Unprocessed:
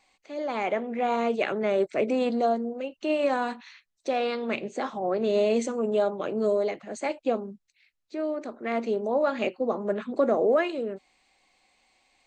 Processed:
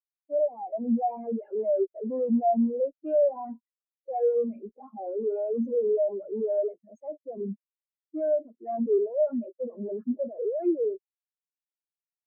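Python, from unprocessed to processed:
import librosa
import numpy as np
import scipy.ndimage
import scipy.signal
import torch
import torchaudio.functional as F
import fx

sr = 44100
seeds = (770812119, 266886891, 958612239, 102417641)

y = fx.fuzz(x, sr, gain_db=49.0, gate_db=-46.0)
y = fx.spectral_expand(y, sr, expansion=4.0)
y = F.gain(torch.from_numpy(y), -6.0).numpy()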